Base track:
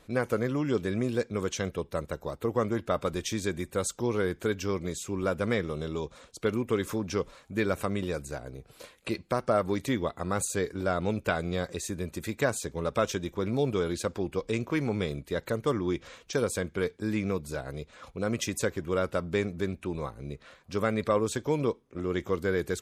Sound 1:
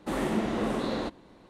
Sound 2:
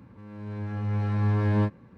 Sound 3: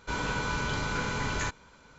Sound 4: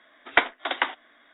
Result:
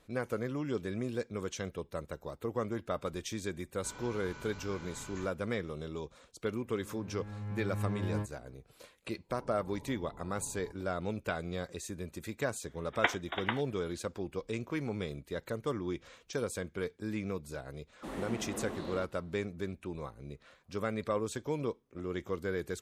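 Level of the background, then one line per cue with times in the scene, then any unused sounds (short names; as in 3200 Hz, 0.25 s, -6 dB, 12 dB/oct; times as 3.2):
base track -7 dB
3.76 add 3 -17.5 dB
6.57 add 2 -11.5 dB
9.22 add 3 -18 dB + elliptic low-pass 930 Hz
12.67 add 4 -9.5 dB
17.96 add 1 -11.5 dB, fades 0.10 s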